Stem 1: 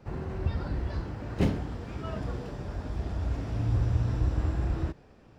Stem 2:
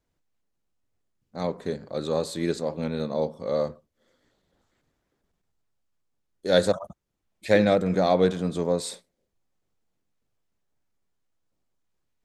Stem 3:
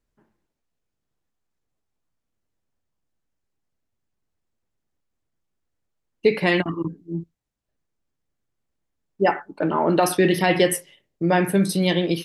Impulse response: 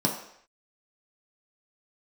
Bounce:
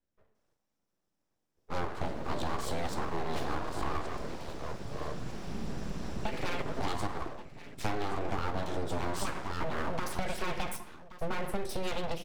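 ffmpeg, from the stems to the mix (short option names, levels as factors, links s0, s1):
-filter_complex "[0:a]highshelf=f=3200:g=9.5,adelay=1950,volume=0.668,asplit=2[s0][s1];[s1]volume=0.141[s2];[1:a]highpass=f=220:p=1,adelay=350,volume=0.562,asplit=3[s3][s4][s5];[s4]volume=0.501[s6];[s5]volume=0.473[s7];[2:a]highshelf=f=8000:g=-7,volume=0.355,asplit=3[s8][s9][s10];[s9]volume=0.168[s11];[s10]volume=0.0944[s12];[3:a]atrim=start_sample=2205[s13];[s6][s11]amix=inputs=2:normalize=0[s14];[s14][s13]afir=irnorm=-1:irlink=0[s15];[s2][s7][s12]amix=inputs=3:normalize=0,aecho=0:1:1125:1[s16];[s0][s3][s8][s15][s16]amix=inputs=5:normalize=0,acrossover=split=180|690[s17][s18][s19];[s17]acompressor=threshold=0.0224:ratio=4[s20];[s18]acompressor=threshold=0.0447:ratio=4[s21];[s19]acompressor=threshold=0.0316:ratio=4[s22];[s20][s21][s22]amix=inputs=3:normalize=0,aeval=exprs='abs(val(0))':c=same,acompressor=threshold=0.0447:ratio=5"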